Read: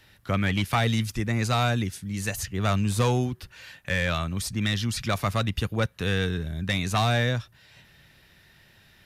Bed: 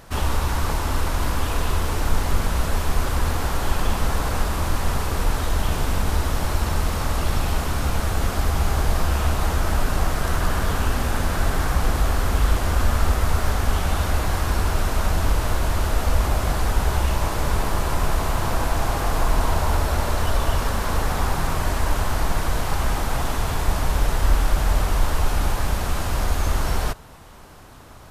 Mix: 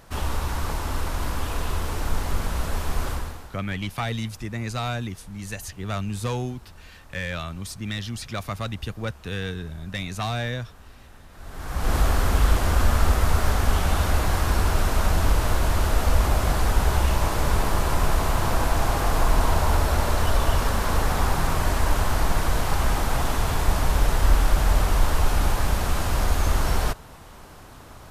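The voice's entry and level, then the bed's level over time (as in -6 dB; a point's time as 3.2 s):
3.25 s, -4.5 dB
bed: 3.11 s -4.5 dB
3.63 s -26 dB
11.29 s -26 dB
11.94 s 0 dB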